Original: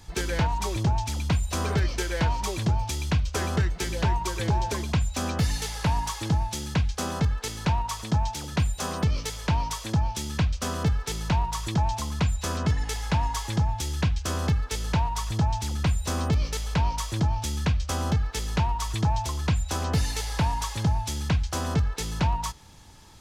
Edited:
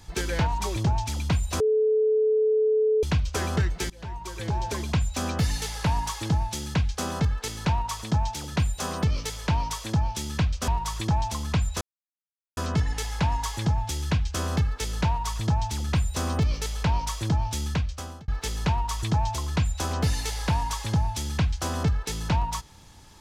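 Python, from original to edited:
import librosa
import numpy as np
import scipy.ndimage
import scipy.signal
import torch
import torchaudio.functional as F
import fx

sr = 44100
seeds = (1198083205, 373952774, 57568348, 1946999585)

y = fx.edit(x, sr, fx.bleep(start_s=1.6, length_s=1.43, hz=433.0, db=-18.5),
    fx.fade_in_from(start_s=3.9, length_s=0.97, floor_db=-23.5),
    fx.cut(start_s=10.68, length_s=0.67),
    fx.insert_silence(at_s=12.48, length_s=0.76),
    fx.fade_out_span(start_s=17.56, length_s=0.63), tone=tone)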